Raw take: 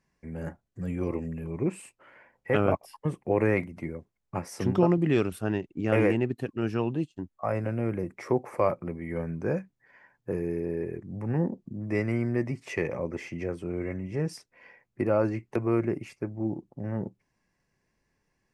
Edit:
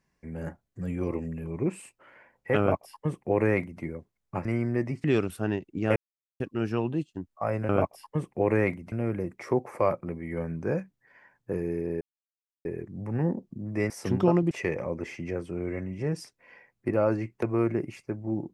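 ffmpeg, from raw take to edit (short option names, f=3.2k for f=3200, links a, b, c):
-filter_complex "[0:a]asplit=10[a][b][c][d][e][f][g][h][i][j];[a]atrim=end=4.452[k];[b]atrim=start=12.048:end=12.642[l];[c]atrim=start=5.058:end=5.98,asetpts=PTS-STARTPTS,afade=t=out:st=0.918:d=0.004:c=hsin[m];[d]atrim=start=5.98:end=6.42,asetpts=PTS-STARTPTS,volume=0[n];[e]atrim=start=6.42:end=7.712,asetpts=PTS-STARTPTS,afade=t=in:d=0.004:c=hsin[o];[f]atrim=start=2.588:end=3.822[p];[g]atrim=start=7.708:end=10.8,asetpts=PTS-STARTPTS,afade=t=out:st=3.088:d=0.004:c=hsin,apad=pad_dur=0.64[q];[h]atrim=start=10.8:end=12.052,asetpts=PTS-STARTPTS,afade=t=in:d=0.004:c=hsin[r];[i]atrim=start=4.448:end=5.062[s];[j]atrim=start=12.638[t];[k][l]acrossfade=d=0.004:c1=hsin:c2=hsin[u];[m][n][o]concat=n=3:v=0:a=1[v];[u][v]acrossfade=d=0.004:c1=hsin:c2=hsin[w];[w][p]acrossfade=d=0.004:c1=hsin:c2=hsin[x];[q][r]concat=n=2:v=0:a=1[y];[x][y]acrossfade=d=0.004:c1=hsin:c2=hsin[z];[z][s]acrossfade=d=0.004:c1=hsin:c2=hsin[aa];[aa][t]acrossfade=d=0.004:c1=hsin:c2=hsin"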